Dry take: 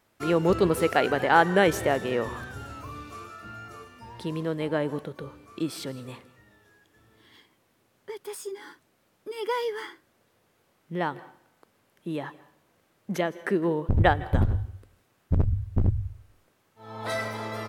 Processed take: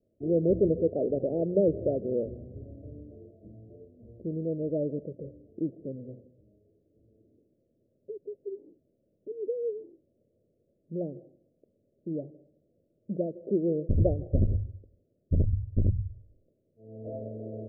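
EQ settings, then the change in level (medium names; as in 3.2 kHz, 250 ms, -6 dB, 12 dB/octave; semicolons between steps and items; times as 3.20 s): steep low-pass 630 Hz 96 dB/octave; hum notches 60/120/180 Hz; -1.5 dB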